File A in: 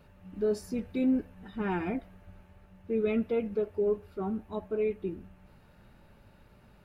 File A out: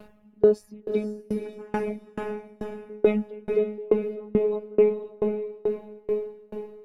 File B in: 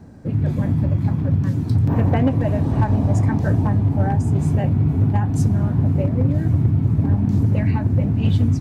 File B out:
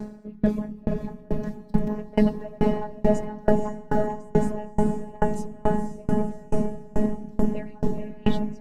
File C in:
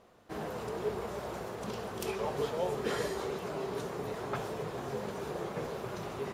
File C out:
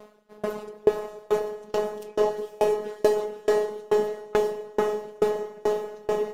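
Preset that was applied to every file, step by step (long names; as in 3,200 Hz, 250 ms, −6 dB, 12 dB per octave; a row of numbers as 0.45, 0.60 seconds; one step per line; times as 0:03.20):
reverb reduction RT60 0.65 s
parametric band 410 Hz +6 dB 1.9 octaves
downward compressor 1.5 to 1, threshold −30 dBFS
phases set to zero 211 Hz
on a send: feedback delay with all-pass diffusion 504 ms, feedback 61%, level −3 dB
on the sum: tremolo with a ramp in dB decaying 2.3 Hz, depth 31 dB
loudness normalisation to −27 LKFS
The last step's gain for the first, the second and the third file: +12.0, +11.0, +14.0 decibels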